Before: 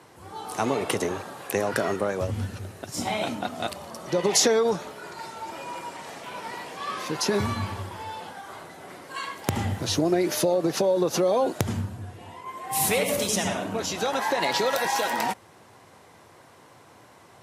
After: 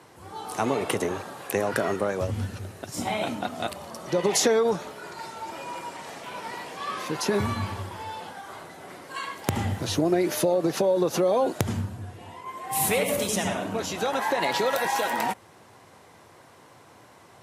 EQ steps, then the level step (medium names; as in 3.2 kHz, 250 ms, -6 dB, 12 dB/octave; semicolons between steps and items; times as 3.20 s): dynamic bell 5.2 kHz, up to -5 dB, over -42 dBFS, Q 1.4; 0.0 dB